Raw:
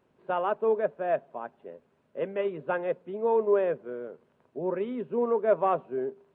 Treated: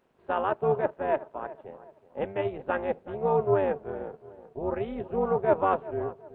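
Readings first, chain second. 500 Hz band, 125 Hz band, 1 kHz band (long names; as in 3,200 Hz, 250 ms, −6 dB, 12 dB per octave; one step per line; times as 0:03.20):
−0.5 dB, +9.5 dB, +2.0 dB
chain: low-shelf EQ 190 Hz −8.5 dB
feedback echo with a low-pass in the loop 375 ms, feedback 39%, low-pass 1,400 Hz, level −16 dB
amplitude modulation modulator 290 Hz, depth 60%
level +4.5 dB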